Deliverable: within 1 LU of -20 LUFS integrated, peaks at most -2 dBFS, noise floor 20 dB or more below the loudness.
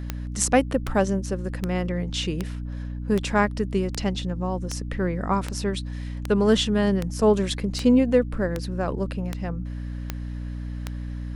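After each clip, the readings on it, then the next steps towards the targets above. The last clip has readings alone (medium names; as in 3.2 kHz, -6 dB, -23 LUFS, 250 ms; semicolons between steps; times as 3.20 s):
clicks found 15; hum 60 Hz; highest harmonic 300 Hz; hum level -29 dBFS; loudness -25.5 LUFS; peak level -5.0 dBFS; loudness target -20.0 LUFS
-> de-click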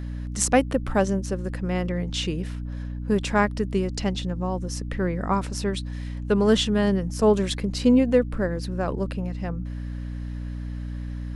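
clicks found 0; hum 60 Hz; highest harmonic 300 Hz; hum level -29 dBFS
-> de-hum 60 Hz, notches 5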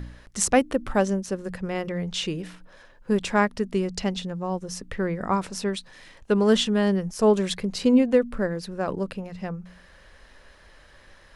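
hum not found; loudness -25.0 LUFS; peak level -4.5 dBFS; loudness target -20.0 LUFS
-> trim +5 dB; peak limiter -2 dBFS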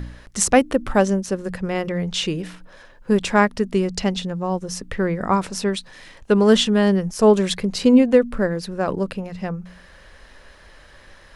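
loudness -20.0 LUFS; peak level -2.0 dBFS; noise floor -48 dBFS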